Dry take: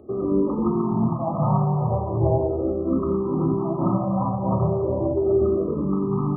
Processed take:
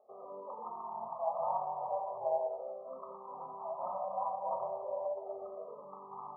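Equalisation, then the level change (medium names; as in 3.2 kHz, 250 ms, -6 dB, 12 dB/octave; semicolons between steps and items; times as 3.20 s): Butterworth band-pass 770 Hz, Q 1.4; static phaser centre 780 Hz, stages 4; -6.0 dB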